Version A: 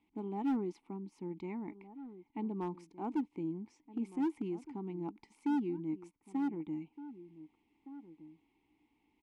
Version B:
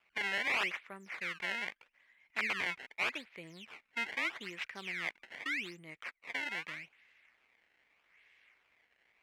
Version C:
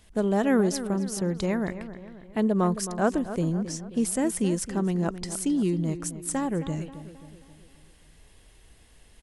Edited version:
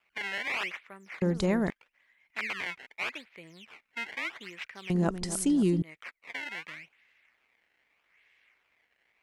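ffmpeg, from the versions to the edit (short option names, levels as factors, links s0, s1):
-filter_complex "[2:a]asplit=2[s0][s1];[1:a]asplit=3[s2][s3][s4];[s2]atrim=end=1.222[s5];[s0]atrim=start=1.218:end=1.702[s6];[s3]atrim=start=1.698:end=4.902[s7];[s1]atrim=start=4.898:end=5.822[s8];[s4]atrim=start=5.818[s9];[s5][s6]acrossfade=d=0.004:c1=hsin:c2=hsin[s10];[s10][s7]acrossfade=d=0.004:c1=hsin:c2=hsin[s11];[s11][s8]acrossfade=d=0.004:c1=hsin:c2=hsin[s12];[s12][s9]acrossfade=d=0.004:c1=hsin:c2=hsin"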